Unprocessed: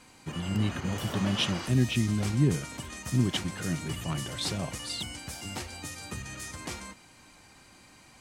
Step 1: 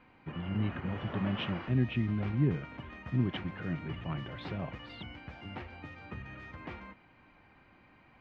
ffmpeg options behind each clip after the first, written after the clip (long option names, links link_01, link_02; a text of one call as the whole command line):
ffmpeg -i in.wav -af "lowpass=frequency=2600:width=0.5412,lowpass=frequency=2600:width=1.3066,volume=-4dB" out.wav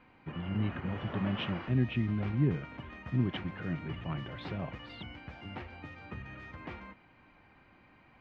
ffmpeg -i in.wav -af anull out.wav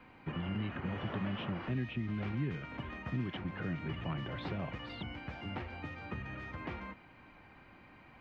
ffmpeg -i in.wav -filter_complex "[0:a]acrossover=split=160|1400[link_01][link_02][link_03];[link_01]acompressor=threshold=-45dB:ratio=4[link_04];[link_02]acompressor=threshold=-42dB:ratio=4[link_05];[link_03]acompressor=threshold=-51dB:ratio=4[link_06];[link_04][link_05][link_06]amix=inputs=3:normalize=0,volume=3.5dB" out.wav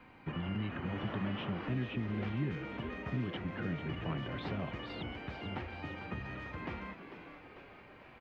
ffmpeg -i in.wav -filter_complex "[0:a]asplit=8[link_01][link_02][link_03][link_04][link_05][link_06][link_07][link_08];[link_02]adelay=446,afreqshift=100,volume=-11dB[link_09];[link_03]adelay=892,afreqshift=200,volume=-15.4dB[link_10];[link_04]adelay=1338,afreqshift=300,volume=-19.9dB[link_11];[link_05]adelay=1784,afreqshift=400,volume=-24.3dB[link_12];[link_06]adelay=2230,afreqshift=500,volume=-28.7dB[link_13];[link_07]adelay=2676,afreqshift=600,volume=-33.2dB[link_14];[link_08]adelay=3122,afreqshift=700,volume=-37.6dB[link_15];[link_01][link_09][link_10][link_11][link_12][link_13][link_14][link_15]amix=inputs=8:normalize=0" out.wav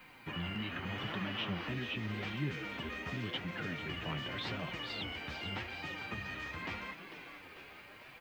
ffmpeg -i in.wav -af "flanger=delay=5.2:depth=8.7:regen=40:speed=0.85:shape=triangular,crystalizer=i=8:c=0" out.wav